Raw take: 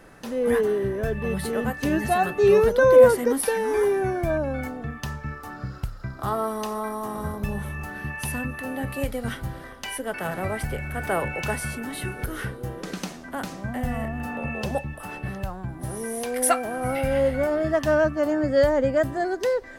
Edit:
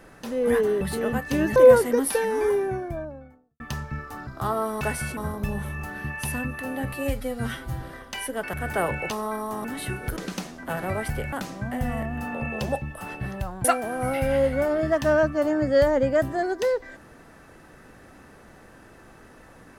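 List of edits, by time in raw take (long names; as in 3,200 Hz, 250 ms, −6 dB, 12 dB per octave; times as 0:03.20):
0:00.81–0:01.33: remove
0:02.08–0:02.89: remove
0:03.51–0:04.93: fade out and dull
0:05.60–0:06.09: remove
0:06.63–0:07.17: swap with 0:11.44–0:11.80
0:08.93–0:09.52: time-stretch 1.5×
0:10.24–0:10.87: move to 0:13.35
0:12.32–0:12.82: remove
0:15.67–0:16.46: remove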